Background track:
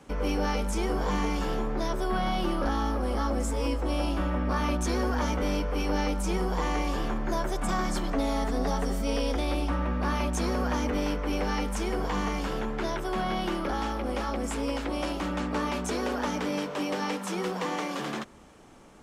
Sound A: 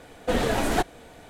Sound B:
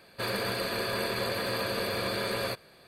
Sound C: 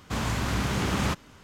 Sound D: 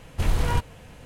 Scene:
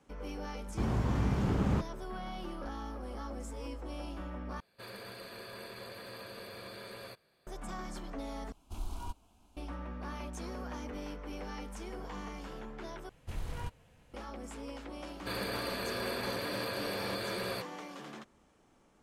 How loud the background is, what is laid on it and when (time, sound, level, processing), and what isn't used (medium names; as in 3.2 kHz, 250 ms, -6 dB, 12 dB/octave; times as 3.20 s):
background track -13.5 dB
0.67 s: add C -10.5 dB + tilt shelf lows +9 dB, about 1.2 kHz
4.60 s: replace with B -15.5 dB
8.52 s: replace with D -15 dB + static phaser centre 500 Hz, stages 6
13.09 s: replace with D -16.5 dB
15.07 s: add B -6 dB
not used: A